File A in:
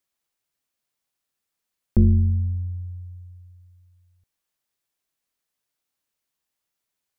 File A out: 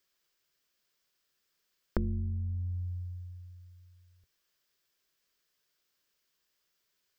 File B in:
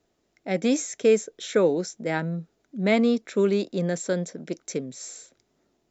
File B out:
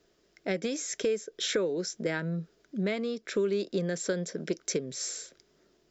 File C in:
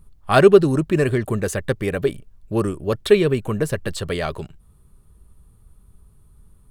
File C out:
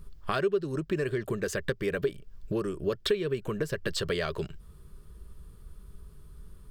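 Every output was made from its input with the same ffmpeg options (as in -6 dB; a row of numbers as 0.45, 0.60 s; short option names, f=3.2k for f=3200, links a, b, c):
-af "acompressor=threshold=-30dB:ratio=12,equalizer=f=100:t=o:w=0.33:g=-10,equalizer=f=250:t=o:w=0.33:g=-6,equalizer=f=400:t=o:w=0.33:g=4,equalizer=f=800:t=o:w=0.33:g=-8,equalizer=f=1.6k:t=o:w=0.33:g=4,equalizer=f=3.15k:t=o:w=0.33:g=3,equalizer=f=5k:t=o:w=0.33:g=6,equalizer=f=10k:t=o:w=0.33:g=-9,volume=3.5dB"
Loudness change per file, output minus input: -14.5, -7.0, -11.5 LU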